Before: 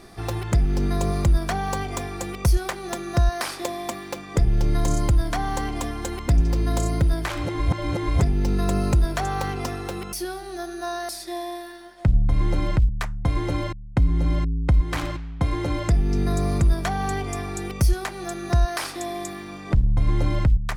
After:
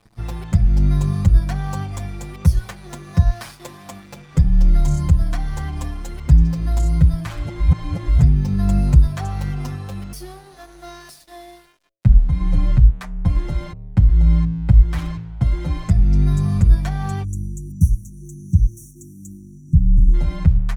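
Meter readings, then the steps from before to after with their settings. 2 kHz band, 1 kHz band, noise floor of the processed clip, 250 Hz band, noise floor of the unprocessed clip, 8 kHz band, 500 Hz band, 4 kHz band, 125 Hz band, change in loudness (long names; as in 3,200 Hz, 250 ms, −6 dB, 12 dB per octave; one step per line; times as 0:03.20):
−6.0 dB, −6.5 dB, −45 dBFS, +3.0 dB, −38 dBFS, −5.5 dB, −8.0 dB, −6.0 dB, +6.0 dB, +6.0 dB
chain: low shelf with overshoot 230 Hz +10.5 dB, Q 1.5
dead-zone distortion −37 dBFS
hum removal 110.2 Hz, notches 6
time-frequency box erased 0:17.24–0:20.14, 350–5,600 Hz
barber-pole flanger 6.9 ms +1.5 Hz
level −1.5 dB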